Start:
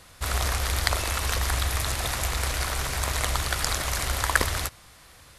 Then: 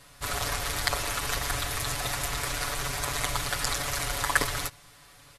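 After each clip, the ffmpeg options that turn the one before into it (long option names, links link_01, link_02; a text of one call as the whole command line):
ffmpeg -i in.wav -af "aecho=1:1:7:0.93,volume=-4.5dB" out.wav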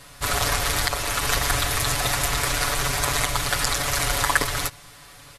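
ffmpeg -i in.wav -af "alimiter=limit=-12.5dB:level=0:latency=1:release=427,volume=7.5dB" out.wav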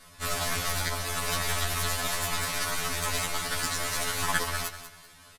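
ffmpeg -i in.wav -filter_complex "[0:a]aeval=exprs='(tanh(3.98*val(0)+0.75)-tanh(0.75))/3.98':channel_layout=same,asplit=2[link_01][link_02];[link_02]aecho=0:1:193|386|579:0.251|0.0754|0.0226[link_03];[link_01][link_03]amix=inputs=2:normalize=0,afftfilt=real='re*2*eq(mod(b,4),0)':imag='im*2*eq(mod(b,4),0)':win_size=2048:overlap=0.75" out.wav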